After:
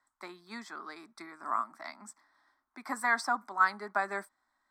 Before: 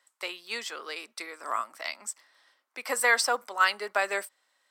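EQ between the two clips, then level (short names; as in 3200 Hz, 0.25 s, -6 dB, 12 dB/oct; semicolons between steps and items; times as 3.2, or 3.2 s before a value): tilt -4.5 dB/oct; bell 3500 Hz +4.5 dB 0.78 oct; fixed phaser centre 1200 Hz, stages 4; 0.0 dB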